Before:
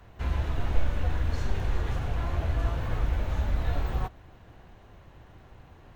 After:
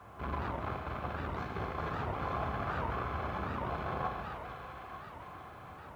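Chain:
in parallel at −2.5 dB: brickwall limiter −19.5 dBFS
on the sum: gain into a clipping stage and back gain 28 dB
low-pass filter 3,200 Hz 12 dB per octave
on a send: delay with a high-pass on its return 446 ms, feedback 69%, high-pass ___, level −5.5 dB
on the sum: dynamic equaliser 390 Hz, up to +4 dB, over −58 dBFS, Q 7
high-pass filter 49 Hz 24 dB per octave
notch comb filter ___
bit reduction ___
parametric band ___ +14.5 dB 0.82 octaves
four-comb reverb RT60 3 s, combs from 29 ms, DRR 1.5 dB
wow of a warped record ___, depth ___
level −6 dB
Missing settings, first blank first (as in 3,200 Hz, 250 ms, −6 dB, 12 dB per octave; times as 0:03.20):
1,600 Hz, 940 Hz, 11 bits, 1,000 Hz, 78 rpm, 250 cents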